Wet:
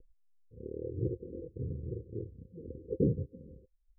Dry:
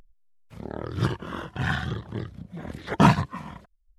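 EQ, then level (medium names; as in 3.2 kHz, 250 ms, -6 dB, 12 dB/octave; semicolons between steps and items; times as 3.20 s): Chebyshev low-pass 520 Hz, order 10; peaking EQ 200 Hz -12 dB 1.3 oct; bass shelf 300 Hz -10 dB; +5.5 dB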